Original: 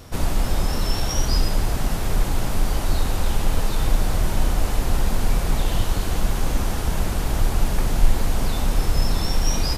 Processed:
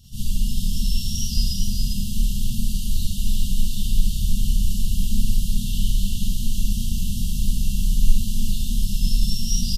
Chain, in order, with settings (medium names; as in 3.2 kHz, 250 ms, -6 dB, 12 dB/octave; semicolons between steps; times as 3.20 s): delay 400 ms -5.5 dB; FFT band-reject 250–2700 Hz; Schroeder reverb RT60 0.38 s, combs from 31 ms, DRR -6.5 dB; trim -8 dB